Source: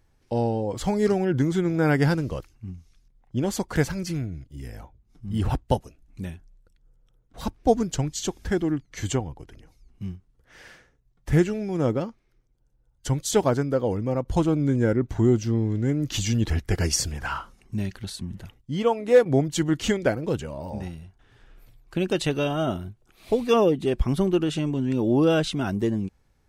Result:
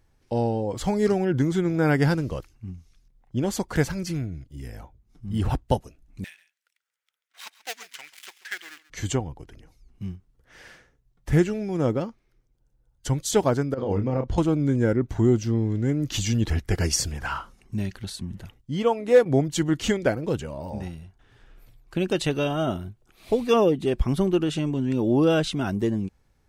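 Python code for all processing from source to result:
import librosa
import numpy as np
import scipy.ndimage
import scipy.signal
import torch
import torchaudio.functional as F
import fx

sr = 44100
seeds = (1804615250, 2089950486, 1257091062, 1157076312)

y = fx.chain(x, sr, fx.dead_time(dead_ms=0.11),
    fx.highpass_res(hz=2000.0, q=2.0),
    fx.echo_single(ms=136, db=-17.0), at=(6.24, 8.9))
y = fx.chain(y, sr, fx.lowpass(hz=4900.0, slope=12),
    fx.over_compress(threshold_db=-25.0, ratio=-0.5),
    fx.doubler(ms=30.0, db=-6), at=(13.74, 14.38))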